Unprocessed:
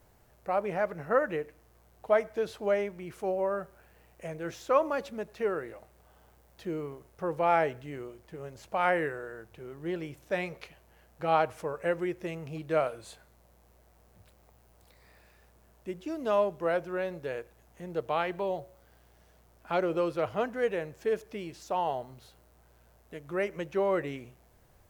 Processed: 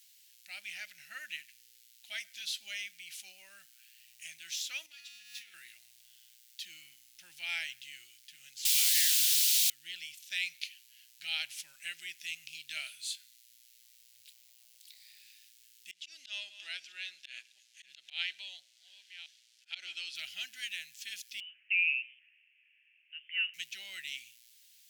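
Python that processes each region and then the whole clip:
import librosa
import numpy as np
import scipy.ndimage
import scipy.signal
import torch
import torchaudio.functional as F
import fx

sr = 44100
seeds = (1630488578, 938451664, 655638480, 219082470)

y = fx.chain(x, sr, fx.comb_fb(f0_hz=100.0, decay_s=1.6, harmonics='all', damping=0.0, mix_pct=90),
    fx.leveller(passes=1),
    fx.pre_swell(db_per_s=44.0), at=(4.86, 5.54))
y = fx.chain(y, sr, fx.over_compress(threshold_db=-29.0, ratio=-0.5),
    fx.quant_dither(seeds[0], bits=6, dither='triangular'), at=(8.65, 9.7))
y = fx.chain(y, sr, fx.reverse_delay(ms=559, wet_db=-14),
    fx.bandpass_edges(low_hz=330.0, high_hz=6500.0),
    fx.auto_swell(attack_ms=111.0), at=(15.91, 20.15))
y = fx.chain(y, sr, fx.highpass(hz=960.0, slope=12),
    fx.freq_invert(carrier_hz=3300), at=(21.4, 23.54))
y = scipy.signal.sosfilt(scipy.signal.cheby2(4, 50, 1200.0, 'highpass', fs=sr, output='sos'), y)
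y = fx.high_shelf(y, sr, hz=4300.0, db=-8.5)
y = y * librosa.db_to_amplitude(17.5)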